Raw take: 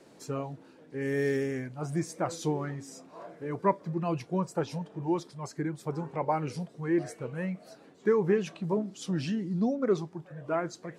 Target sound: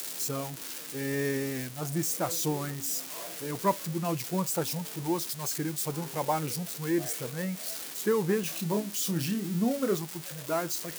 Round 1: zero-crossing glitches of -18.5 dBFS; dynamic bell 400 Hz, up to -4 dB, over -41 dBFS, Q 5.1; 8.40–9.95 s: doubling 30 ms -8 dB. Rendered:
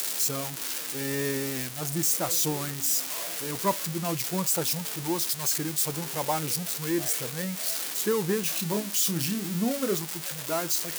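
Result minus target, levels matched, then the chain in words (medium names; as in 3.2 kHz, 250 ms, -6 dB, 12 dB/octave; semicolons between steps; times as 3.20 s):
zero-crossing glitches: distortion +7 dB
zero-crossing glitches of -25.5 dBFS; dynamic bell 400 Hz, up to -4 dB, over -41 dBFS, Q 5.1; 8.40–9.95 s: doubling 30 ms -8 dB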